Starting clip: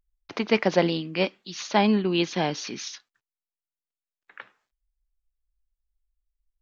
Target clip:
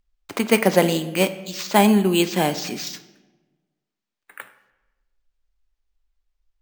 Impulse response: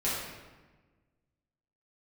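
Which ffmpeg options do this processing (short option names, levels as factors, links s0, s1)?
-filter_complex "[0:a]acrusher=samples=4:mix=1:aa=0.000001,asplit=2[s0][s1];[1:a]atrim=start_sample=2205,asetrate=52920,aresample=44100[s2];[s1][s2]afir=irnorm=-1:irlink=0,volume=0.141[s3];[s0][s3]amix=inputs=2:normalize=0,volume=1.58"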